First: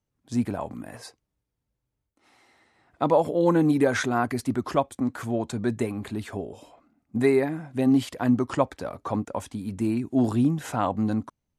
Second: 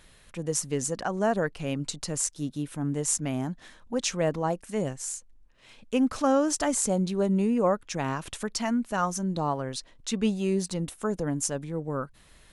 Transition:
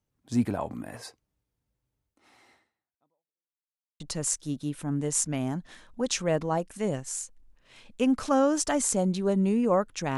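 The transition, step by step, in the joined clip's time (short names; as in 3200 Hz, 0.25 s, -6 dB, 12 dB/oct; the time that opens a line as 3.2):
first
2.53–3.54 fade out exponential
3.54–4 mute
4 switch to second from 1.93 s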